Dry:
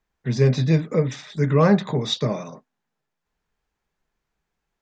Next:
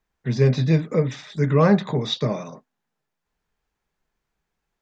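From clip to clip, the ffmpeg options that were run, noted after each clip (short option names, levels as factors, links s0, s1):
-filter_complex "[0:a]acrossover=split=5800[s0][s1];[s1]acompressor=threshold=0.00251:ratio=4:attack=1:release=60[s2];[s0][s2]amix=inputs=2:normalize=0"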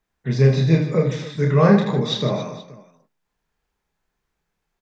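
-af "aecho=1:1:30|78|154.8|277.7|474.3:0.631|0.398|0.251|0.158|0.1"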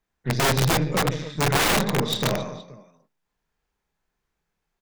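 -af "aeval=exprs='(mod(4.47*val(0)+1,2)-1)/4.47':c=same,aeval=exprs='0.224*(cos(1*acos(clip(val(0)/0.224,-1,1)))-cos(1*PI/2))+0.0224*(cos(6*acos(clip(val(0)/0.224,-1,1)))-cos(6*PI/2))':c=same,volume=0.75"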